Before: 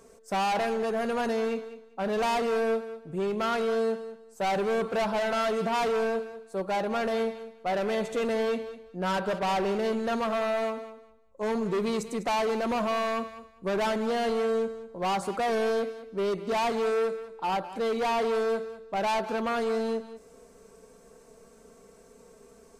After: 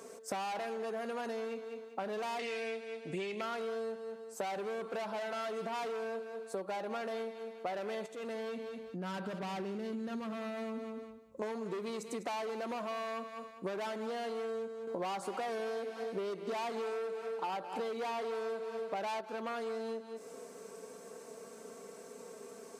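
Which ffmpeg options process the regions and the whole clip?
ffmpeg -i in.wav -filter_complex "[0:a]asettb=1/sr,asplit=3[link_01][link_02][link_03];[link_01]atrim=end=2.394[link_04];[link_02]atrim=start=2.39:end=3.41,asetpts=PTS-STARTPTS,afade=type=in:duration=0.004:curve=qsin,afade=type=out:start_time=1.016:duration=0.004:curve=qsin,lowpass=8600,highshelf=frequency=1700:width_type=q:width=3:gain=8[link_05];[link_03]atrim=start=3.406[link_06];[link_04][link_05]acrossfade=duration=0.004:curve1=hsin:curve2=qsin[link_07];[link_07][link_06]acrossfade=duration=0.004:curve1=qsin:curve2=hsin,asettb=1/sr,asplit=3[link_08][link_09][link_10];[link_08]atrim=end=8.064[link_11];[link_09]atrim=start=8.06:end=11.42,asetpts=PTS-STARTPTS,afade=type=in:duration=0.004:curve=qsin,afade=type=out:start_time=3.356:duration=0.004:curve=qsin,acompressor=threshold=-47dB:ratio=2.5:attack=3.2:release=140:knee=1:detection=peak,asubboost=boost=10.5:cutoff=240[link_12];[link_10]atrim=start=11.416[link_13];[link_11][link_12]acrossfade=duration=0.004:curve1=hsin:curve2=qsin[link_14];[link_14][link_13]acrossfade=duration=0.004:curve1=qsin:curve2=hsin,asettb=1/sr,asplit=3[link_15][link_16][link_17];[link_15]atrim=end=14.874[link_18];[link_16]atrim=start=14.87:end=19.21,asetpts=PTS-STARTPTS,afade=type=in:duration=0.004:curve=qsin,afade=type=out:start_time=4.336:duration=0.004:curve=qsin,acontrast=69,aecho=1:1:293|586|879:0.2|0.0718|0.0259,atrim=end_sample=191394[link_19];[link_17]atrim=start=19.206[link_20];[link_18][link_19]acrossfade=duration=0.004:curve1=hsin:curve2=qsin[link_21];[link_21][link_20]acrossfade=duration=0.004:curve1=qsin:curve2=hsin,highpass=230,acompressor=threshold=-41dB:ratio=10,volume=5dB" out.wav

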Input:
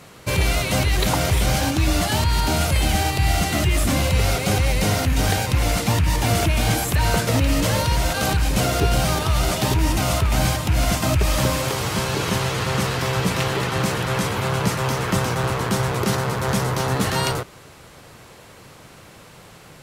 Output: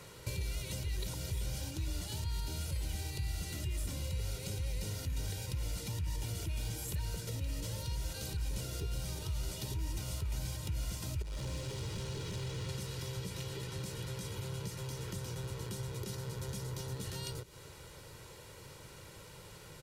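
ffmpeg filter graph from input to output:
ffmpeg -i in.wav -filter_complex "[0:a]asettb=1/sr,asplit=3[link_01][link_02][link_03];[link_01]atrim=end=11.224[link_04];[link_02]atrim=start=11.22:end=12.69,asetpts=PTS-STARTPTS,afade=type=in:duration=0.004:curve=qsin,afade=type=out:start_time=1.466:duration=0.004:curve=qsin,lowpass=10000,highshelf=frequency=4400:gain=-9.5,asoftclip=type=hard:threshold=-24.5dB[link_05];[link_03]atrim=start=12.686[link_06];[link_04][link_05]acrossfade=duration=0.004:curve1=hsin:curve2=qsin[link_07];[link_07][link_06]acrossfade=duration=0.004:curve1=qsin:curve2=hsin,acompressor=threshold=-30dB:ratio=6,aecho=1:1:2.1:0.57,acrossover=split=370|3000[link_08][link_09][link_10];[link_09]acompressor=threshold=-51dB:ratio=3[link_11];[link_08][link_11][link_10]amix=inputs=3:normalize=0,volume=-6.5dB" out.wav

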